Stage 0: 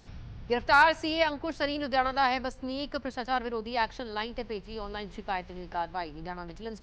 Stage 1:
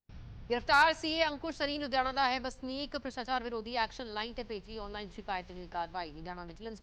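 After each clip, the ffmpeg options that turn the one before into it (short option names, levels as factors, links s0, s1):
-af "agate=range=0.0178:threshold=0.00631:ratio=16:detection=peak,adynamicequalizer=threshold=0.00708:dfrequency=3300:dqfactor=0.7:tfrequency=3300:tqfactor=0.7:attack=5:release=100:ratio=0.375:range=3:mode=boostabove:tftype=highshelf,volume=0.596"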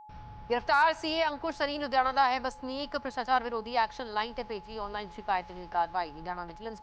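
-af "alimiter=limit=0.0891:level=0:latency=1:release=176,equalizer=f=1000:w=0.78:g=9,aeval=exprs='val(0)+0.00398*sin(2*PI*850*n/s)':c=same"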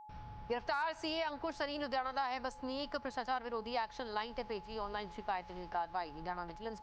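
-af "acompressor=threshold=0.0282:ratio=4,volume=0.708"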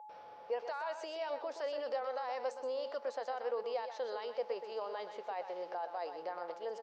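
-af "alimiter=level_in=3.35:limit=0.0631:level=0:latency=1:release=14,volume=0.299,highpass=f=520:t=q:w=4.9,aecho=1:1:124:0.355,volume=0.841"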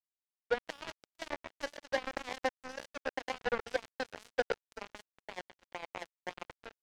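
-af "acrusher=bits=4:mix=0:aa=0.5,volume=2"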